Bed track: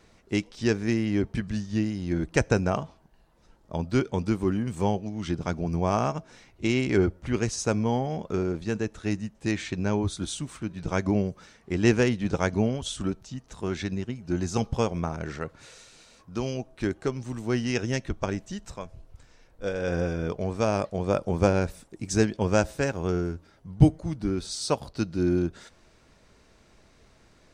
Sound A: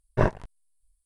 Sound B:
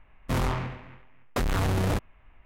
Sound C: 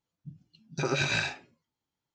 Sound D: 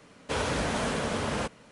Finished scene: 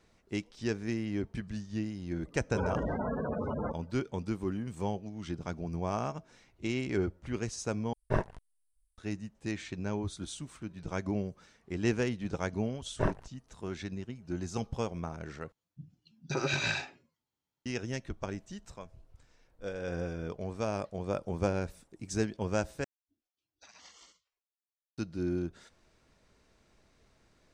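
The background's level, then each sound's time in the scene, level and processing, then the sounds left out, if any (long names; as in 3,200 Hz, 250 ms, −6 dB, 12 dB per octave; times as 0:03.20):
bed track −8.5 dB
0:02.25: mix in D −2 dB + gate on every frequency bin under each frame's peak −10 dB strong
0:07.93: overwrite with A −7.5 dB
0:12.82: mix in A −8 dB
0:15.52: overwrite with C −3 dB
0:22.84: overwrite with C −15 dB + gate on every frequency bin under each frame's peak −20 dB weak
not used: B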